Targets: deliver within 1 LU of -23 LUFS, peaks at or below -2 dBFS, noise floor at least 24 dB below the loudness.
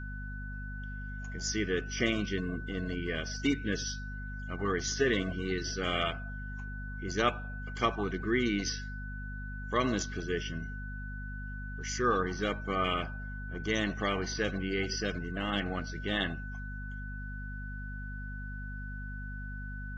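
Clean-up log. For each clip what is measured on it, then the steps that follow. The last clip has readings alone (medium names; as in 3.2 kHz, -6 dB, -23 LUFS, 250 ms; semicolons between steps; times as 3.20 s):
hum 50 Hz; highest harmonic 250 Hz; hum level -38 dBFS; steady tone 1.5 kHz; tone level -44 dBFS; loudness -34.5 LUFS; peak level -12.0 dBFS; loudness target -23.0 LUFS
-> hum notches 50/100/150/200/250 Hz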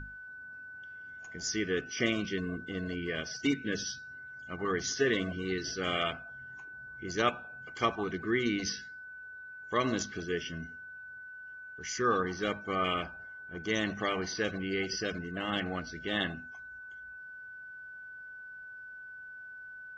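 hum not found; steady tone 1.5 kHz; tone level -44 dBFS
-> band-stop 1.5 kHz, Q 30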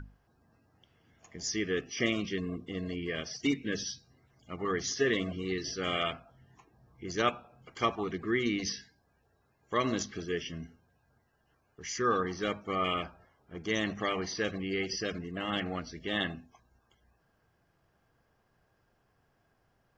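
steady tone not found; loudness -33.0 LUFS; peak level -13.5 dBFS; loudness target -23.0 LUFS
-> trim +10 dB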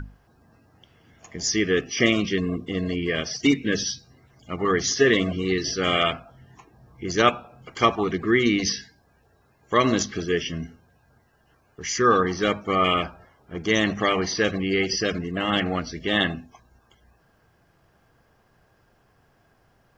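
loudness -23.5 LUFS; peak level -3.5 dBFS; noise floor -63 dBFS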